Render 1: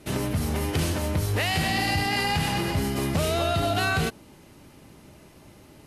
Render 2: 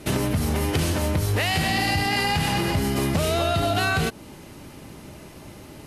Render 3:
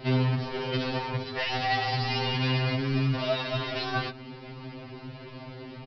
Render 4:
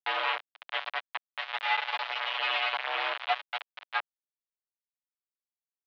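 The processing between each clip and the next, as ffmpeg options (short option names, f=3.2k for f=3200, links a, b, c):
-af "acompressor=threshold=-30dB:ratio=2.5,volume=8dB"
-af "aresample=11025,asoftclip=type=tanh:threshold=-24.5dB,aresample=44100,afftfilt=real='re*2.45*eq(mod(b,6),0)':imag='im*2.45*eq(mod(b,6),0)':win_size=2048:overlap=0.75,volume=3dB"
-af "acrusher=bits=3:mix=0:aa=0.000001,highpass=f=600:t=q:w=0.5412,highpass=f=600:t=q:w=1.307,lowpass=f=3.4k:t=q:w=0.5176,lowpass=f=3.4k:t=q:w=0.7071,lowpass=f=3.4k:t=q:w=1.932,afreqshift=78"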